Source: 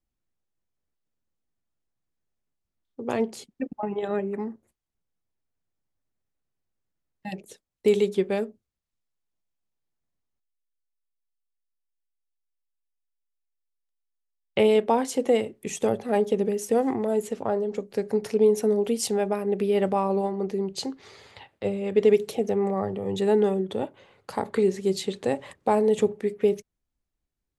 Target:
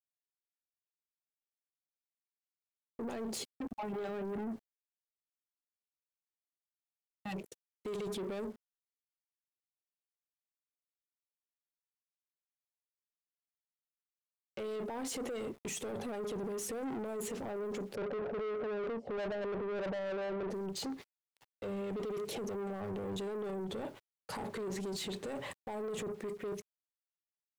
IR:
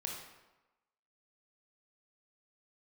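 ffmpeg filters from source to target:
-filter_complex "[0:a]agate=range=-29dB:threshold=-42dB:ratio=16:detection=peak,dynaudnorm=framelen=230:gausssize=17:maxgain=13dB,alimiter=limit=-23.5dB:level=0:latency=1:release=12,aeval=exprs='val(0)*gte(abs(val(0)),0.00224)':channel_layout=same,asplit=3[link_01][link_02][link_03];[link_01]afade=type=out:start_time=17.94:duration=0.02[link_04];[link_02]lowpass=frequency=600:width_type=q:width=4.4,afade=type=in:start_time=17.94:duration=0.02,afade=type=out:start_time=20.5:duration=0.02[link_05];[link_03]afade=type=in:start_time=20.5:duration=0.02[link_06];[link_04][link_05][link_06]amix=inputs=3:normalize=0,asoftclip=type=tanh:threshold=-31.5dB,volume=-4dB"

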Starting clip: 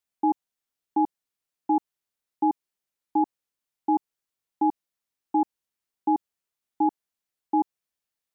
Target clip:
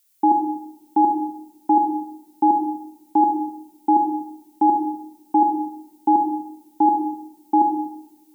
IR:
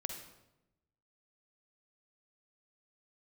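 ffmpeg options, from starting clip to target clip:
-filter_complex "[0:a]crystalizer=i=6:c=0[link_01];[1:a]atrim=start_sample=2205[link_02];[link_01][link_02]afir=irnorm=-1:irlink=0,volume=6.5dB"

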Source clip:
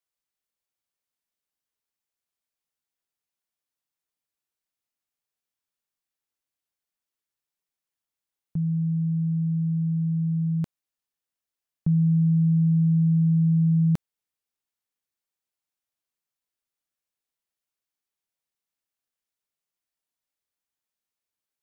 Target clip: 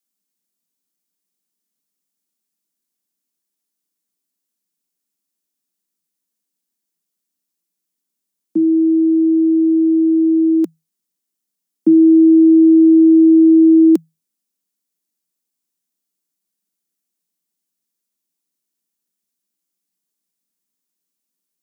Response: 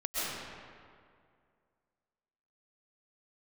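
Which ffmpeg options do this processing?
-af "bass=frequency=250:gain=14,treble=frequency=4000:gain=11,afreqshift=160"

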